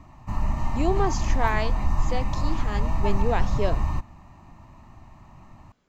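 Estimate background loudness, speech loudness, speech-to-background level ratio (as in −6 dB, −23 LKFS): −28.5 LKFS, −30.0 LKFS, −1.5 dB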